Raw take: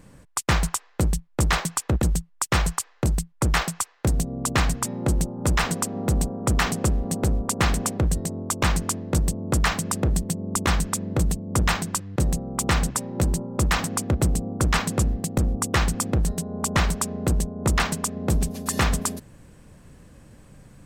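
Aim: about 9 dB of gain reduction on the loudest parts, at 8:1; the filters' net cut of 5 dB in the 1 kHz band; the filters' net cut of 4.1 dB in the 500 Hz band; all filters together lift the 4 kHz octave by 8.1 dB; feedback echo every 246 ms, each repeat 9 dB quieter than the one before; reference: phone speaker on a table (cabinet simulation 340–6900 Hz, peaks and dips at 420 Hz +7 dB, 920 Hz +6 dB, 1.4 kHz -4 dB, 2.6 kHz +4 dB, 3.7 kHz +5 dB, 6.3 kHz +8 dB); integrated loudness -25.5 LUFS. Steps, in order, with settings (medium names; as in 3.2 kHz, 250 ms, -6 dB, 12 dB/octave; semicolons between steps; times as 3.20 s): peaking EQ 500 Hz -7.5 dB; peaking EQ 1 kHz -7 dB; peaking EQ 4 kHz +6 dB; compression 8:1, threshold -27 dBFS; cabinet simulation 340–6900 Hz, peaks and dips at 420 Hz +7 dB, 920 Hz +6 dB, 1.4 kHz -4 dB, 2.6 kHz +4 dB, 3.7 kHz +5 dB, 6.3 kHz +8 dB; feedback delay 246 ms, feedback 35%, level -9 dB; trim +8 dB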